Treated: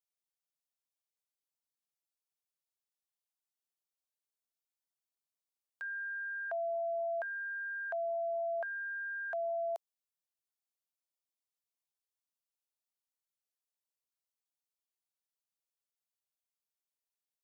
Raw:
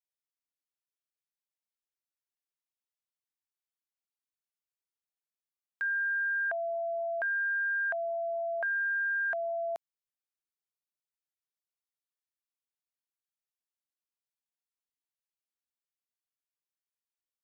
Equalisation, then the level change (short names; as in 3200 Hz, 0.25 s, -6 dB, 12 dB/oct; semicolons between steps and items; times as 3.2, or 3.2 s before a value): HPF 470 Hz 24 dB/oct; bell 1800 Hz -10 dB 1.3 oct; 0.0 dB